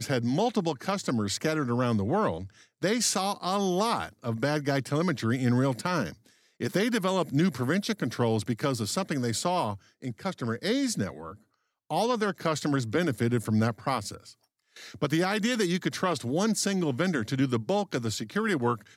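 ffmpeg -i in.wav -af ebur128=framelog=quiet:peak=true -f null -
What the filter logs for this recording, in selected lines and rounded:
Integrated loudness:
  I:         -28.2 LUFS
  Threshold: -38.6 LUFS
Loudness range:
  LRA:         2.6 LU
  Threshold: -48.7 LUFS
  LRA low:   -30.4 LUFS
  LRA high:  -27.7 LUFS
True peak:
  Peak:      -13.2 dBFS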